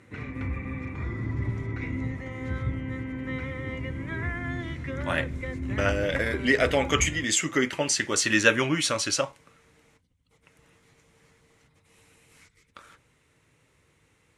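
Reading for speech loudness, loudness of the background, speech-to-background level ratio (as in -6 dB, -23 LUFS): -25.0 LUFS, -33.5 LUFS, 8.5 dB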